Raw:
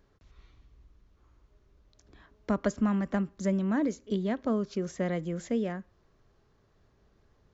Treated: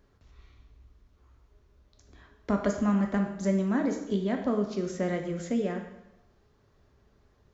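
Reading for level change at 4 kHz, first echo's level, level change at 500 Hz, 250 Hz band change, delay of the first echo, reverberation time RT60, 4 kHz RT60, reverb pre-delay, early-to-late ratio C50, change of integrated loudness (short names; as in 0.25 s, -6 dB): +1.5 dB, none, +2.0 dB, +1.5 dB, none, 0.90 s, 0.85 s, 6 ms, 7.0 dB, +1.5 dB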